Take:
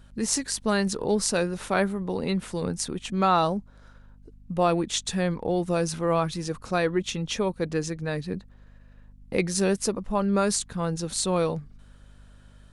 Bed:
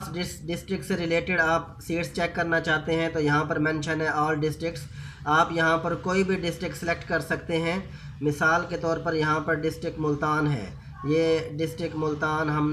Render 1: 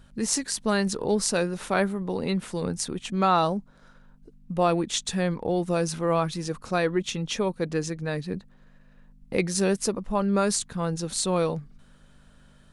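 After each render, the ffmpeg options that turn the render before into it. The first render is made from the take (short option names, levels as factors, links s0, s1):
-af "bandreject=f=50:t=h:w=4,bandreject=f=100:t=h:w=4"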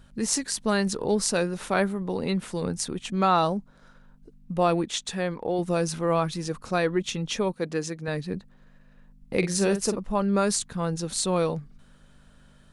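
-filter_complex "[0:a]asettb=1/sr,asplit=3[s0][s1][s2];[s0]atrim=end=4.864[s3];[s1]atrim=start=4.86:end=5.59,asetpts=PTS-STARTPTS,afade=t=in:d=0.004:c=qsin,afade=t=out:st=0.726:d=0.004:c=qsin,bass=f=250:g=-7,treble=f=4000:g=-4[s4];[s2]atrim=start=5.586[s5];[s3][s4]acrossfade=d=0.004:c1=hsin:c2=qsin[s6];[s6][s5]acrossfade=d=0.004:c1=qsin:c2=hsin,asettb=1/sr,asplit=3[s7][s8][s9];[s7]atrim=end=7.534[s10];[s8]atrim=start=7.53:end=8.08,asetpts=PTS-STARTPTS,afade=t=in:d=0.004:c=qsin,afade=t=out:st=0.546:d=0.004:c=qsin,highpass=f=190:p=1[s11];[s9]atrim=start=8.076[s12];[s10][s11]acrossfade=d=0.004:c1=hsin:c2=qsin[s13];[s13][s12]acrossfade=d=0.004:c1=qsin:c2=hsin,asettb=1/sr,asplit=3[s14][s15][s16];[s14]atrim=end=9.384[s17];[s15]atrim=start=9.38:end=9.97,asetpts=PTS-STARTPTS,afade=t=in:d=0.004:c=qsin,afade=t=out:st=0.586:d=0.004:c=qsin,asplit=2[s18][s19];[s19]adelay=45,volume=0.355[s20];[s18][s20]amix=inputs=2:normalize=0,atrim=end_sample=26019[s21];[s16]atrim=start=9.966[s22];[s17][s21]acrossfade=d=0.004:c1=hsin:c2=qsin[s23];[s23][s22]acrossfade=d=0.004:c1=qsin:c2=hsin"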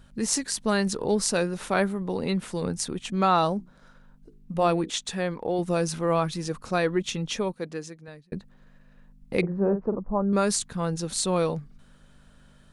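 -filter_complex "[0:a]asettb=1/sr,asplit=3[s0][s1][s2];[s0]atrim=end=3.584[s3];[s1]atrim=start=3.58:end=4.9,asetpts=PTS-STARTPTS,afade=t=in:d=0.004:c=qsin,afade=t=out:st=1.316:d=0.004:c=qsin,bandreject=f=60:t=h:w=6,bandreject=f=120:t=h:w=6,bandreject=f=180:t=h:w=6,bandreject=f=240:t=h:w=6,bandreject=f=300:t=h:w=6,bandreject=f=360:t=h:w=6,bandreject=f=420:t=h:w=6,bandreject=f=480:t=h:w=6[s4];[s2]atrim=start=4.896[s5];[s3][s4]acrossfade=d=0.004:c1=hsin:c2=qsin[s6];[s6][s5]acrossfade=d=0.004:c1=qsin:c2=hsin,asettb=1/sr,asplit=3[s7][s8][s9];[s7]atrim=end=9.414[s10];[s8]atrim=start=9.41:end=10.33,asetpts=PTS-STARTPTS,afade=t=in:d=0.004:c=qsin,afade=t=out:st=0.916:d=0.004:c=qsin,lowpass=f=1100:w=0.5412,lowpass=f=1100:w=1.3066[s11];[s9]atrim=start=10.326[s12];[s10][s11]acrossfade=d=0.004:c1=hsin:c2=qsin[s13];[s13][s12]acrossfade=d=0.004:c1=qsin:c2=hsin,asplit=2[s14][s15];[s14]atrim=end=8.32,asetpts=PTS-STARTPTS,afade=t=out:st=7.23:d=1.09[s16];[s15]atrim=start=8.32,asetpts=PTS-STARTPTS,afade=t=in:d=0.004:c=hsin[s17];[s16][s17]concat=n=2:v=0:a=1"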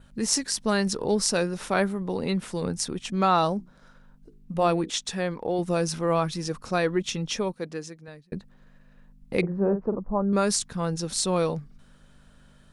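-af "adynamicequalizer=threshold=0.00316:dfrequency=5400:dqfactor=5.8:tfrequency=5400:tqfactor=5.8:attack=5:release=100:ratio=0.375:range=3:mode=boostabove:tftype=bell"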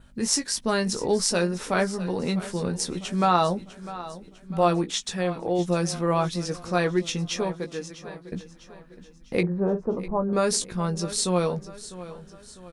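-filter_complex "[0:a]asplit=2[s0][s1];[s1]adelay=17,volume=0.422[s2];[s0][s2]amix=inputs=2:normalize=0,aecho=1:1:651|1302|1953|2604:0.168|0.0789|0.0371|0.0174"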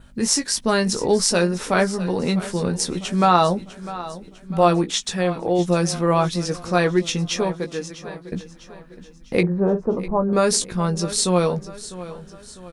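-af "volume=1.78,alimiter=limit=0.708:level=0:latency=1"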